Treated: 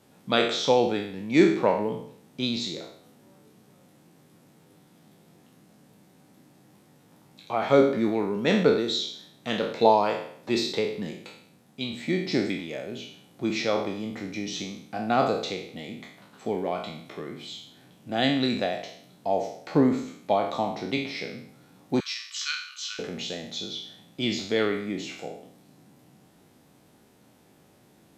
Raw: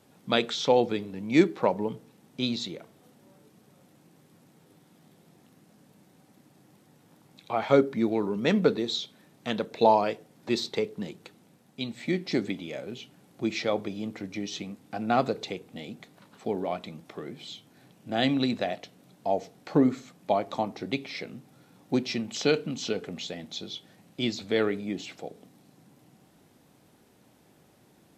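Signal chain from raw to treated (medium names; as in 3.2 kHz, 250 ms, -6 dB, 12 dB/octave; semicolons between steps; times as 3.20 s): spectral sustain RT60 0.63 s; 22.00–22.99 s: rippled Chebyshev high-pass 1.1 kHz, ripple 3 dB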